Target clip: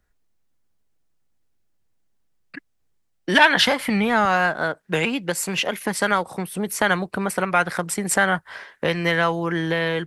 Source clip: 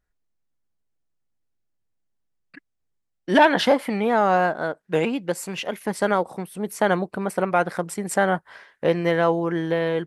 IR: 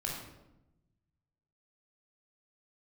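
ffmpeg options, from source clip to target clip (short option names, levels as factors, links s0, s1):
-filter_complex "[0:a]asettb=1/sr,asplit=3[s0][s1][s2];[s0]atrim=end=3.794[s3];[s1]atrim=start=3.79:end=4.25,asetpts=PTS-STARTPTS,afade=t=in:d=0.004:c=qsin,afade=t=out:st=0.456:d=0.004:c=qsin,equalizer=f=85:t=o:w=2.5:g=12.5[s4];[s2]atrim=start=4.246[s5];[s3][s4]acrossfade=d=0.004:c1=hsin:c2=qsin[s6];[s6][s5]acrossfade=d=0.004:c1=qsin:c2=hsin,acrossover=split=130|1200[s7][s8][s9];[s8]acompressor=threshold=0.0224:ratio=4[s10];[s7][s10][s9]amix=inputs=3:normalize=0,volume=2.51"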